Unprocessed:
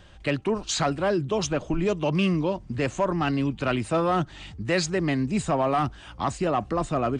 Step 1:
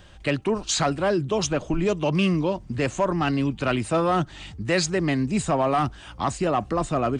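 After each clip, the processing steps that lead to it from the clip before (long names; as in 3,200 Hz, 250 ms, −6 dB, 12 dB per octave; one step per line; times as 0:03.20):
high-shelf EQ 8,600 Hz +6.5 dB
level +1.5 dB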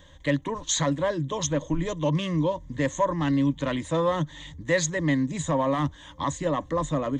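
EQ curve with evenly spaced ripples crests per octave 1.1, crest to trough 14 dB
level −5 dB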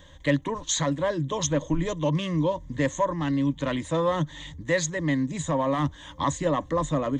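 speech leveller within 3 dB 0.5 s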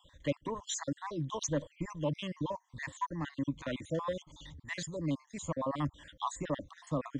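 time-frequency cells dropped at random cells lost 48%
level −7.5 dB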